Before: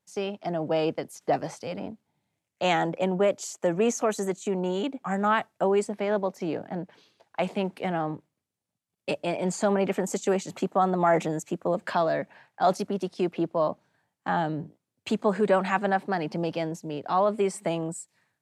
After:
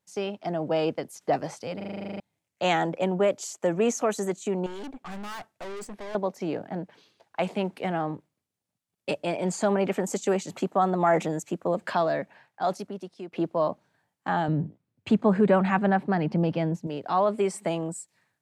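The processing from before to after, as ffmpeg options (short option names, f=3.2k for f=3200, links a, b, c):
-filter_complex "[0:a]asettb=1/sr,asplit=3[a][b][c];[a]atrim=end=4.664[d];[b]atrim=start=4.66:end=6.15,asetpts=PTS-STARTPTS,afade=t=in:d=0.004:c=qsin,afade=t=out:st=1.486:d=0.004:c=qsin,aeval=exprs='(tanh(63.1*val(0)+0.5)-tanh(0.5))/63.1':c=same[e];[c]atrim=start=6.146[f];[d][e]acrossfade=d=0.004:c1=hsin:c2=qsin[g];[g][f]acrossfade=d=0.004:c1=qsin:c2=hsin,asettb=1/sr,asplit=3[h][i][j];[h]atrim=end=14.484[k];[i]atrim=start=14.48:end=16.87,asetpts=PTS-STARTPTS,afade=t=in:d=0.004:c=qsin,afade=t=out:st=2.386:d=0.004:c=qsin,bass=f=250:g=10,treble=f=4k:g=-10[l];[j]atrim=start=16.866[m];[k][l]acrossfade=d=0.004:c1=hsin:c2=qsin[n];[n][m]acrossfade=d=0.004:c1=qsin:c2=hsin,asplit=13[o][p][q][r][s][t][u][v][w][x][y][z][aa];[o]atrim=end=1.802[ab];[p]atrim=start=1.758:end=1.802[ac];[q]atrim=start=1.758:end=1.802[ad];[r]atrim=start=1.758:end=1.802[ae];[s]atrim=start=1.758:end=1.802[af];[t]atrim=start=1.758:end=1.802[ag];[u]atrim=start=1.758:end=1.802[ah];[v]atrim=start=1.758:end=1.802[ai];[w]atrim=start=1.758:end=1.802[aj];[x]atrim=start=1.758:end=1.802[ak];[y]atrim=start=1.758:end=1.802[al];[z]atrim=start=2.198:end=13.33,asetpts=PTS-STARTPTS,afade=t=out:st=9.872:d=1.26:silence=0.177828[am];[aa]atrim=start=13.33,asetpts=PTS-STARTPTS,afade=t=in:d=0.004:c=hsin:silence=0.177828[an];[ab][ac]acrossfade=d=0.004:c1=hsin:c2=hsin[ao];[ao][ad]acrossfade=d=0.004:c1=hsin:c2=hsin[ap];[ap][ae]acrossfade=d=0.004:c1=hsin:c2=hsin[aq];[aq][af]acrossfade=d=0.004:c1=hsin:c2=hsin[ar];[ar][ag]acrossfade=d=0.004:c1=hsin:c2=hsin[as];[as][ah]acrossfade=d=0.004:c1=hsin:c2=hsin[at];[at][ai]acrossfade=d=0.004:c1=hsin:c2=hsin[au];[au][aj]acrossfade=d=0.004:c1=hsin:c2=hsin[av];[av][ak]acrossfade=d=0.004:c1=hsin:c2=hsin[aw];[aw][al]acrossfade=d=0.004:c1=hsin:c2=hsin[ax];[am][an]concat=n=2:v=0:a=1[ay];[ax][ay]acrossfade=d=0.004:c1=hsin:c2=hsin"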